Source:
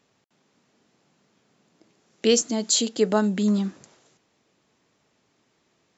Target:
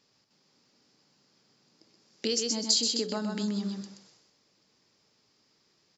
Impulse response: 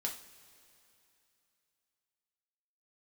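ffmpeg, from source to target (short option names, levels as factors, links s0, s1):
-af "aecho=1:1:127|254|381:0.501|0.125|0.0313,acompressor=threshold=0.0708:ratio=6,equalizer=f=4900:w=2.9:g=15,bandreject=f=680:w=12,bandreject=f=85.97:t=h:w=4,bandreject=f=171.94:t=h:w=4,bandreject=f=257.91:t=h:w=4,bandreject=f=343.88:t=h:w=4,bandreject=f=429.85:t=h:w=4,bandreject=f=515.82:t=h:w=4,bandreject=f=601.79:t=h:w=4,bandreject=f=687.76:t=h:w=4,bandreject=f=773.73:t=h:w=4,bandreject=f=859.7:t=h:w=4,bandreject=f=945.67:t=h:w=4,bandreject=f=1031.64:t=h:w=4,bandreject=f=1117.61:t=h:w=4,bandreject=f=1203.58:t=h:w=4,bandreject=f=1289.55:t=h:w=4,bandreject=f=1375.52:t=h:w=4,bandreject=f=1461.49:t=h:w=4,bandreject=f=1547.46:t=h:w=4,bandreject=f=1633.43:t=h:w=4,bandreject=f=1719.4:t=h:w=4,bandreject=f=1805.37:t=h:w=4,volume=0.562"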